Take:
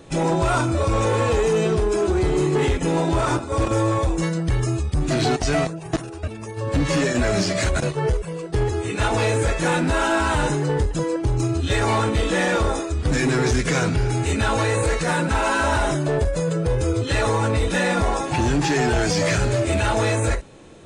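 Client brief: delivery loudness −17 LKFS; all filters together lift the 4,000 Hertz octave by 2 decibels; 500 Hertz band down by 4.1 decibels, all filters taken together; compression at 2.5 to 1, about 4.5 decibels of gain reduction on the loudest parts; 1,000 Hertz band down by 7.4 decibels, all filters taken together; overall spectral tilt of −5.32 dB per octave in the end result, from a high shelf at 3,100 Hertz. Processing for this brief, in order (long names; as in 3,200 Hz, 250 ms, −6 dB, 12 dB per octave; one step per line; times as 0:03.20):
parametric band 500 Hz −3 dB
parametric band 1,000 Hz −8.5 dB
high-shelf EQ 3,100 Hz −5.5 dB
parametric band 4,000 Hz +7 dB
downward compressor 2.5 to 1, threshold −24 dBFS
level +10 dB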